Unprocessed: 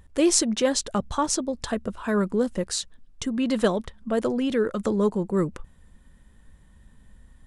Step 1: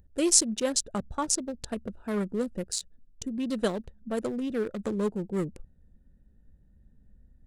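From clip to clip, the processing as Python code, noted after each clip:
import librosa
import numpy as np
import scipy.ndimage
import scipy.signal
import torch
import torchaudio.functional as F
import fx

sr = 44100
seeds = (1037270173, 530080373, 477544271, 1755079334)

y = fx.wiener(x, sr, points=41)
y = fx.high_shelf(y, sr, hz=5100.0, db=11.5)
y = y * librosa.db_to_amplitude(-5.5)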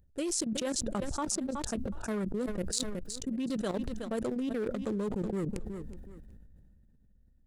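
y = fx.level_steps(x, sr, step_db=16)
y = fx.echo_feedback(y, sr, ms=371, feedback_pct=25, wet_db=-22.5)
y = fx.sustainer(y, sr, db_per_s=21.0)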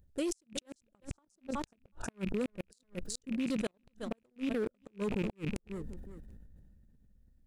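y = fx.rattle_buzz(x, sr, strikes_db=-37.0, level_db=-32.0)
y = fx.gate_flip(y, sr, shuts_db=-23.0, range_db=-40)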